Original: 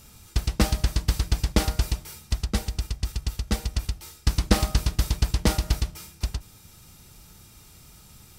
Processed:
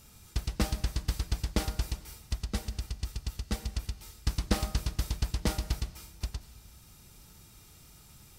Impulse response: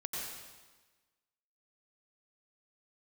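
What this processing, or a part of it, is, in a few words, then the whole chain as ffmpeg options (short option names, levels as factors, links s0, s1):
ducked reverb: -filter_complex "[0:a]asplit=3[s0][s1][s2];[1:a]atrim=start_sample=2205[s3];[s1][s3]afir=irnorm=-1:irlink=0[s4];[s2]apad=whole_len=369956[s5];[s4][s5]sidechaincompress=threshold=0.0251:ratio=5:attack=16:release=894,volume=0.631[s6];[s0][s6]amix=inputs=2:normalize=0,volume=0.376"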